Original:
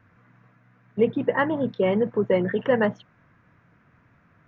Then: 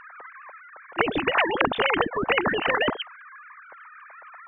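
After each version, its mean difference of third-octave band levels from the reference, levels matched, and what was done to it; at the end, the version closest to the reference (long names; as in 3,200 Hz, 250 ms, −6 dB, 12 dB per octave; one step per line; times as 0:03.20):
8.5 dB: three sine waves on the formant tracks
high-shelf EQ 2,400 Hz −8.5 dB
brickwall limiter −16 dBFS, peak gain reduction 9.5 dB
every bin compressed towards the loudest bin 4 to 1
level +7.5 dB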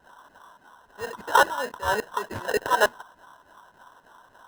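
13.0 dB: brickwall limiter −18.5 dBFS, peak gain reduction 9.5 dB
auto-filter high-pass saw down 3.5 Hz 480–2,600 Hz
sample-rate reduction 2,300 Hz, jitter 0%
hollow resonant body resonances 1,000/1,500 Hz, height 14 dB, ringing for 20 ms
level +1.5 dB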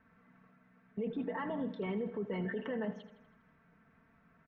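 4.5 dB: comb filter 4.5 ms, depth 84%
brickwall limiter −21 dBFS, peak gain reduction 17 dB
high-frequency loss of the air 84 metres
on a send: repeating echo 81 ms, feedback 56%, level −13.5 dB
on the sum: level −8.5 dB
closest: third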